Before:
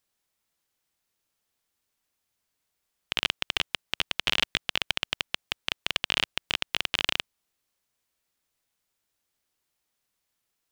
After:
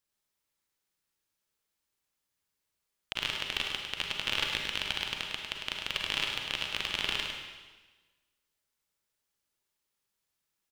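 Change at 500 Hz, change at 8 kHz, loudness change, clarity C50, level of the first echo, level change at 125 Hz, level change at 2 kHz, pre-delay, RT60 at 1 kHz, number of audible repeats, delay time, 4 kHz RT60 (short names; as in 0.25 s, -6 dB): -4.0 dB, -3.5 dB, -4.0 dB, 1.0 dB, -6.5 dB, -3.5 dB, -3.5 dB, 34 ms, 1.3 s, 1, 0.103 s, 1.2 s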